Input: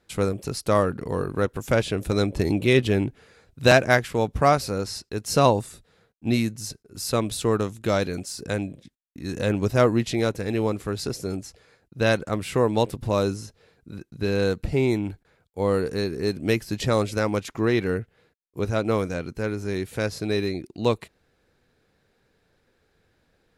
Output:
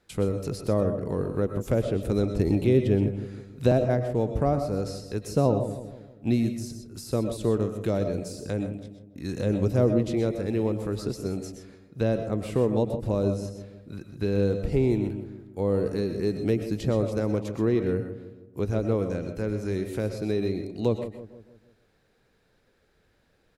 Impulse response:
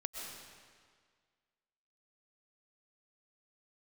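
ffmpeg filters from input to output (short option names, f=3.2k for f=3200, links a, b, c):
-filter_complex "[0:a]acrossover=split=610[a][b];[b]acompressor=threshold=-41dB:ratio=5[c];[a][c]amix=inputs=2:normalize=0,asplit=2[d][e];[e]adelay=160,lowpass=f=1.2k:p=1,volume=-11dB,asplit=2[f][g];[g]adelay=160,lowpass=f=1.2k:p=1,volume=0.5,asplit=2[h][i];[i]adelay=160,lowpass=f=1.2k:p=1,volume=0.5,asplit=2[j][k];[k]adelay=160,lowpass=f=1.2k:p=1,volume=0.5,asplit=2[l][m];[m]adelay=160,lowpass=f=1.2k:p=1,volume=0.5[n];[d][f][h][j][l][n]amix=inputs=6:normalize=0[o];[1:a]atrim=start_sample=2205,afade=t=out:st=0.18:d=0.01,atrim=end_sample=8379[p];[o][p]afir=irnorm=-1:irlink=0,volume=2dB"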